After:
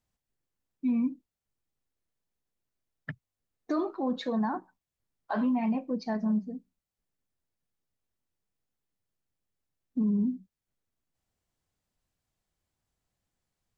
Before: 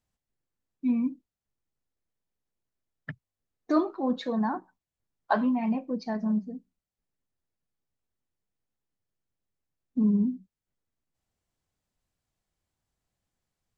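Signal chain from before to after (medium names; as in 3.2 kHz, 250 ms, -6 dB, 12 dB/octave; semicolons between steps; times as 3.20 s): peak limiter -21.5 dBFS, peak gain reduction 9.5 dB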